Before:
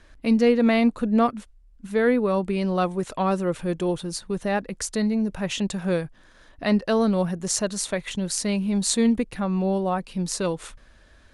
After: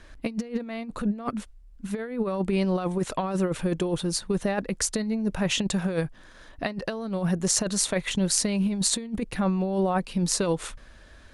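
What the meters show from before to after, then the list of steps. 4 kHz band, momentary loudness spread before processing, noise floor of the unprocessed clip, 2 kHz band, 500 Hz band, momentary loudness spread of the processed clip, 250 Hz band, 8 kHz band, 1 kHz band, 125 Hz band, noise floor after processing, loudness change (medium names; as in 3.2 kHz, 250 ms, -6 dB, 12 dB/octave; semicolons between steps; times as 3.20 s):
+1.5 dB, 8 LU, -53 dBFS, -3.5 dB, -5.0 dB, 9 LU, -4.0 dB, +2.0 dB, -5.0 dB, 0.0 dB, -50 dBFS, -3.0 dB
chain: compressor with a negative ratio -25 dBFS, ratio -0.5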